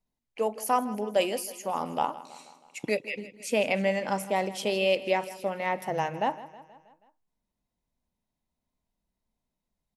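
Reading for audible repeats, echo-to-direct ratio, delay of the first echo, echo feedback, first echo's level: 4, −15.5 dB, 160 ms, 56%, −17.0 dB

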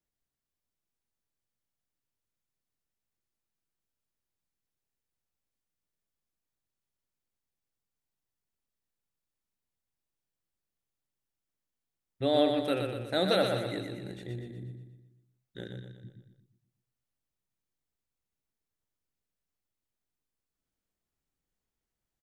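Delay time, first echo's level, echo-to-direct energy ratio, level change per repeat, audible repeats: 121 ms, −5.5 dB, −4.5 dB, −6.0 dB, 5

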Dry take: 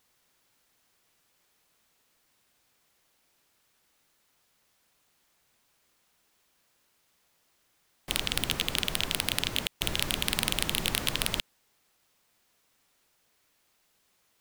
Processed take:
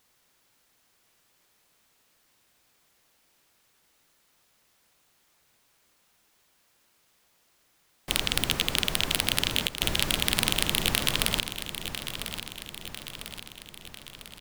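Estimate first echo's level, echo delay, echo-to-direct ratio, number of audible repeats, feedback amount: −10.0 dB, 998 ms, −8.5 dB, 5, 56%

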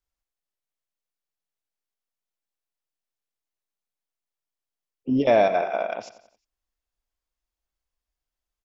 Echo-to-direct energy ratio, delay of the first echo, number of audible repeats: −14.0 dB, 89 ms, 4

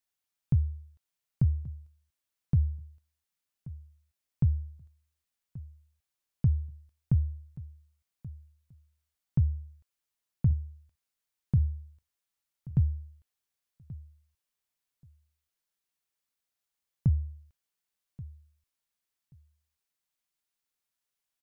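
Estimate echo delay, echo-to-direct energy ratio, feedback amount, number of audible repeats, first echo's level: 1,131 ms, −18.0 dB, 17%, 2, −18.0 dB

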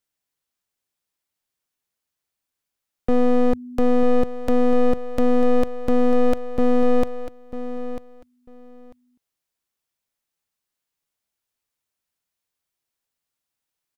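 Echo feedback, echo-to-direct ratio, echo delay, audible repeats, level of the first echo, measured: 17%, −12.0 dB, 945 ms, 2, −12.0 dB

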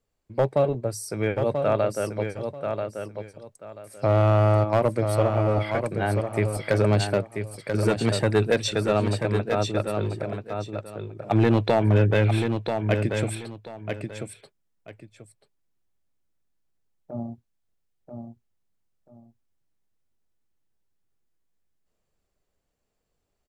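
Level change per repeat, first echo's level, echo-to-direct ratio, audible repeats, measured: −13.0 dB, −6.0 dB, −6.0 dB, 2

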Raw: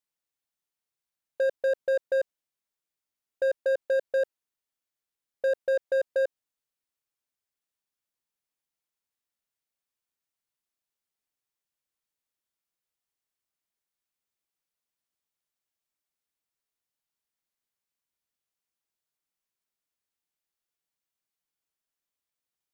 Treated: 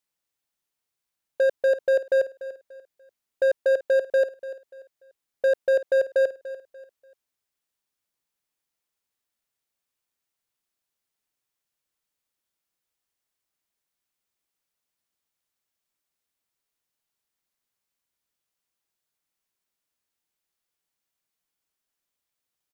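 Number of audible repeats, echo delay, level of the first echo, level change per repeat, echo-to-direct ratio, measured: 3, 292 ms, −15.0 dB, −10.0 dB, −14.5 dB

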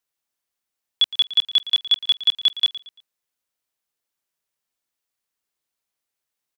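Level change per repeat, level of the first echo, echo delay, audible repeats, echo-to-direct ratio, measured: −9.5 dB, −16.0 dB, 114 ms, 3, −15.5 dB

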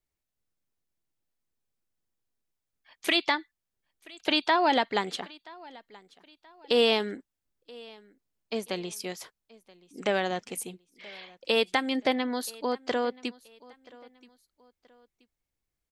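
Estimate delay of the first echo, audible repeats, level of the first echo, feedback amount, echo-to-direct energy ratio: 978 ms, 2, −23.0 dB, 37%, −22.5 dB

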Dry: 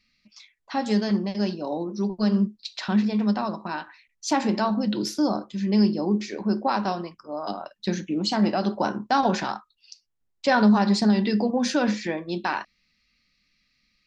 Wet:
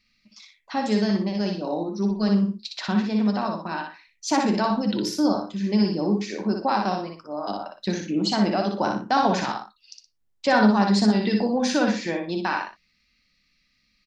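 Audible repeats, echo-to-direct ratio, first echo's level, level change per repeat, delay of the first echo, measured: 2, −3.5 dB, −4.0 dB, −10.5 dB, 60 ms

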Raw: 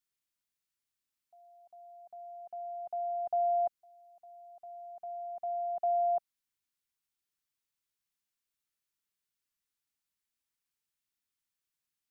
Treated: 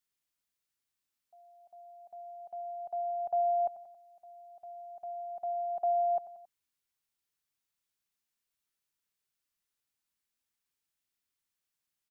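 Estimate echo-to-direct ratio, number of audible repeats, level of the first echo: −13.5 dB, 3, −15.0 dB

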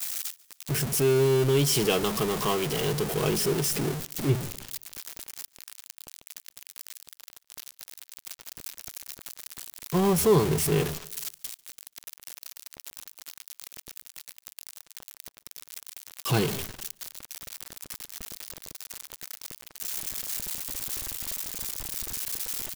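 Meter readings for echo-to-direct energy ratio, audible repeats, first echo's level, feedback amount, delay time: −23.0 dB, 2, −24.0 dB, 41%, 144 ms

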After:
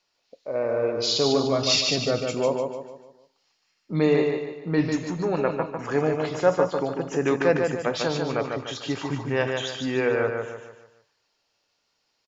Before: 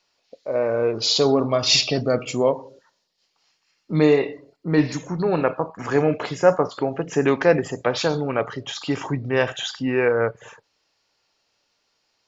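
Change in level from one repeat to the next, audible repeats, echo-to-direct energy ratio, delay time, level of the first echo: −7.5 dB, 4, −3.5 dB, 148 ms, −4.5 dB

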